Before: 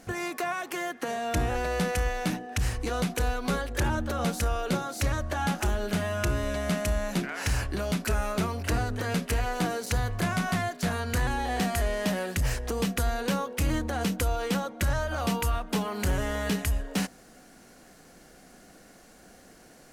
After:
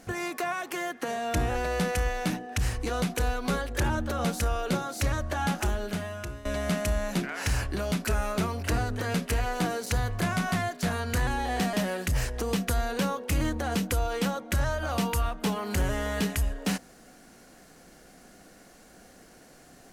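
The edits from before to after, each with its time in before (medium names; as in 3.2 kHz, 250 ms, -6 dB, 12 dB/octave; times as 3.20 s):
5.60–6.45 s: fade out, to -17 dB
11.73–12.02 s: delete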